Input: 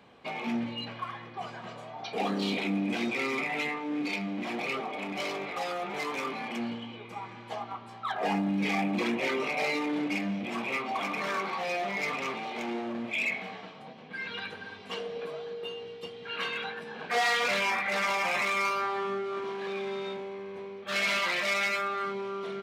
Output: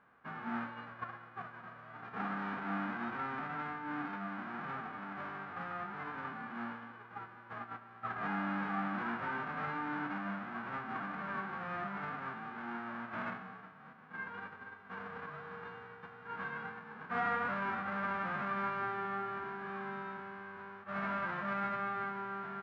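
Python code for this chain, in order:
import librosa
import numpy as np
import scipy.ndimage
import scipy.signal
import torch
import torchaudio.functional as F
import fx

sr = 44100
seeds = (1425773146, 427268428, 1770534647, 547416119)

y = fx.envelope_flatten(x, sr, power=0.1)
y = fx.ladder_lowpass(y, sr, hz=1600.0, resonance_pct=55)
y = y * librosa.db_to_amplitude(4.0)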